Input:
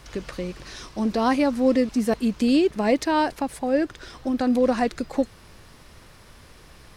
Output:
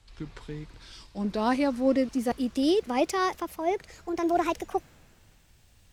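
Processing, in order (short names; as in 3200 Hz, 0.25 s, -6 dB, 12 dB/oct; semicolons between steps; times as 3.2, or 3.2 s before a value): speed glide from 76% -> 159%; three-band expander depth 40%; gain -5 dB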